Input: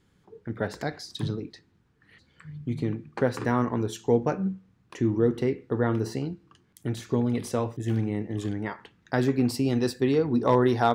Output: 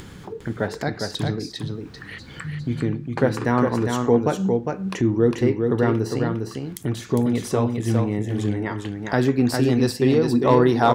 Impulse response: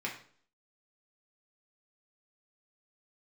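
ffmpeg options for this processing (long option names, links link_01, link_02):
-filter_complex "[0:a]acompressor=mode=upward:threshold=-28dB:ratio=2.5,asplit=2[link_01][link_02];[link_02]aecho=0:1:405:0.596[link_03];[link_01][link_03]amix=inputs=2:normalize=0,volume=4.5dB"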